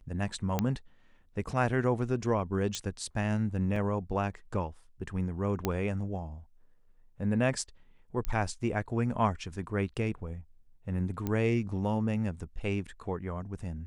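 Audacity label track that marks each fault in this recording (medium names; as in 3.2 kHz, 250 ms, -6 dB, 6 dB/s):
0.590000	0.590000	pop -14 dBFS
2.750000	2.750000	pop -18 dBFS
3.760000	3.760000	dropout 2.7 ms
5.650000	5.650000	pop -14 dBFS
8.250000	8.250000	pop -18 dBFS
11.270000	11.270000	pop -19 dBFS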